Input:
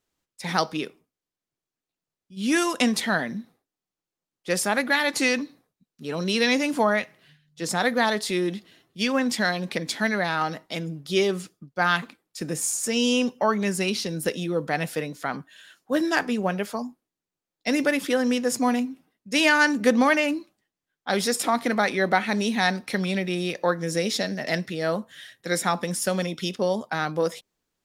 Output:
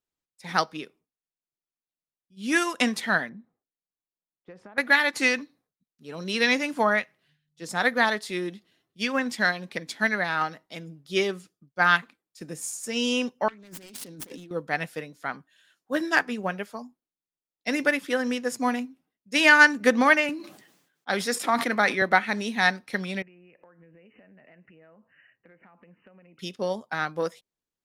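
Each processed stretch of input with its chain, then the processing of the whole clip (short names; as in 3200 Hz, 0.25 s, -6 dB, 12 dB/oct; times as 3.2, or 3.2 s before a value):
3.29–4.78 LPF 1500 Hz + compressor 20:1, threshold -29 dBFS
13.48–14.51 self-modulated delay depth 0.36 ms + bell 280 Hz +11.5 dB 0.32 oct + negative-ratio compressor -34 dBFS
20.29–22.02 HPF 130 Hz 24 dB/oct + sustainer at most 63 dB/s
23.22–26.39 brick-wall FIR low-pass 3000 Hz + compressor 12:1, threshold -38 dBFS
whole clip: dynamic EQ 1700 Hz, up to +6 dB, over -35 dBFS, Q 0.89; upward expander 1.5:1, over -36 dBFS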